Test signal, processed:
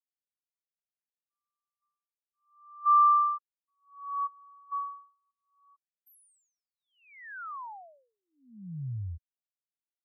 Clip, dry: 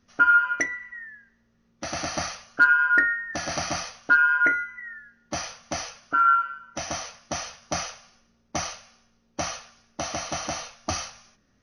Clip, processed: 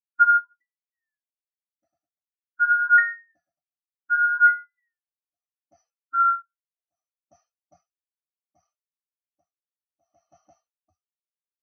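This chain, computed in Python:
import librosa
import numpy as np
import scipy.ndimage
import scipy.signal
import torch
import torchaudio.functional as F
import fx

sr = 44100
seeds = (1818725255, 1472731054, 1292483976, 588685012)

y = x * (1.0 - 0.93 / 2.0 + 0.93 / 2.0 * np.cos(2.0 * np.pi * 0.67 * (np.arange(len(x)) / sr)))
y = fx.spectral_expand(y, sr, expansion=2.5)
y = F.gain(torch.from_numpy(y), 1.5).numpy()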